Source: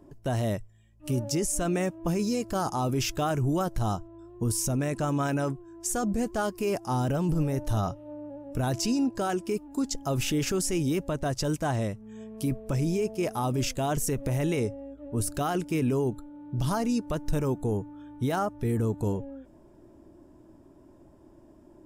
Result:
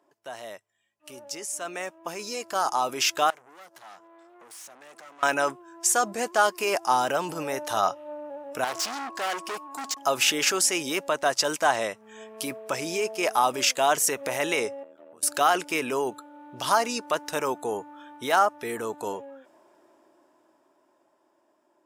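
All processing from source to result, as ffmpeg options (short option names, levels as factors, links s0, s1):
-filter_complex "[0:a]asettb=1/sr,asplit=3[s0][s1][s2];[s0]atrim=end=3.304[s3];[s1]atrim=start=3.3:end=5.23,asetpts=PTS-STARTPTS,afade=t=in:d=0.004:c=qsin,afade=t=out:st=1.926:d=0.004:c=qsin,highpass=f=130:w=0.5412,highpass=f=130:w=1.3066,acompressor=threshold=0.01:ratio=6:attack=3.2:release=140:knee=1:detection=peak,aeval=exprs='(tanh(316*val(0)+0.7)-tanh(0.7))/316':c=same[s4];[s2]atrim=start=5.226[s5];[s3][s4]acrossfade=d=0.004:c1=hsin:c2=qsin[s6];[s6][s5]acrossfade=d=0.004:c1=qsin:c2=hsin,asettb=1/sr,asplit=3[s7][s8][s9];[s7]atrim=end=8.644[s10];[s8]atrim=start=8.64:end=9.98,asetpts=PTS-STARTPTS,afade=t=in:d=0.004:c=qsin,afade=t=out:st=1.336:d=0.004:c=qsin,asoftclip=type=hard:threshold=0.0188,aeval=exprs='val(0)+0.00251*sin(2*PI*1100*n/s)':c=same[s11];[s9]atrim=start=9.976[s12];[s10][s11]acrossfade=d=0.004:c1=hsin:c2=qsin[s13];[s13][s12]acrossfade=d=0.004:c1=qsin:c2=hsin,asettb=1/sr,asplit=3[s14][s15][s16];[s14]atrim=end=14.834[s17];[s15]atrim=start=14.83:end=15.23,asetpts=PTS-STARTPTS,afade=t=in:d=0.004:c=qsin,afade=t=out:st=0.396:d=0.004:c=qsin,tremolo=f=80:d=0.947,acompressor=threshold=0.00501:ratio=8:attack=3.2:release=140:knee=1:detection=peak[s18];[s16]atrim=start=15.226[s19];[s17][s18]acrossfade=d=0.004:c1=hsin:c2=qsin[s20];[s20][s19]acrossfade=d=0.004:c1=qsin:c2=hsin,highpass=810,highshelf=f=6500:g=-6.5,dynaudnorm=f=310:g=17:m=5.01,volume=0.841"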